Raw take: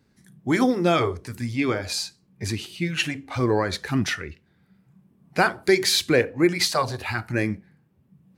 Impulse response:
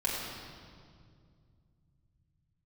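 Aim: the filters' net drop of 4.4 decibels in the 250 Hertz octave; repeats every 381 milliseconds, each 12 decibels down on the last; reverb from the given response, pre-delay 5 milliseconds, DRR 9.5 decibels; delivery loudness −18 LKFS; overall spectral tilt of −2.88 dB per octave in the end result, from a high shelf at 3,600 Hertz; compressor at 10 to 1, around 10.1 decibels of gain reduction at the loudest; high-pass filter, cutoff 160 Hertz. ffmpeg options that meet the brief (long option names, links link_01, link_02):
-filter_complex "[0:a]highpass=160,equalizer=frequency=250:width_type=o:gain=-5.5,highshelf=frequency=3600:gain=8,acompressor=threshold=-23dB:ratio=10,aecho=1:1:381|762|1143:0.251|0.0628|0.0157,asplit=2[link_01][link_02];[1:a]atrim=start_sample=2205,adelay=5[link_03];[link_02][link_03]afir=irnorm=-1:irlink=0,volume=-17dB[link_04];[link_01][link_04]amix=inputs=2:normalize=0,volume=10dB"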